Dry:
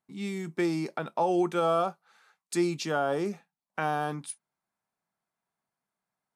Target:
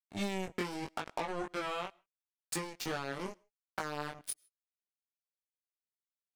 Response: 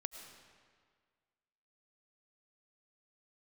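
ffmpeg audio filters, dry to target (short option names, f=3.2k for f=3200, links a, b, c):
-filter_complex "[0:a]acompressor=threshold=-37dB:ratio=20,acrusher=bits=5:mix=0:aa=0.5,flanger=delay=18.5:depth=3.7:speed=0.81,asplit=2[a][b];[1:a]atrim=start_sample=2205,afade=t=out:st=0.21:d=0.01,atrim=end_sample=9702[c];[b][c]afir=irnorm=-1:irlink=0,volume=-15dB[d];[a][d]amix=inputs=2:normalize=0,volume=6dB"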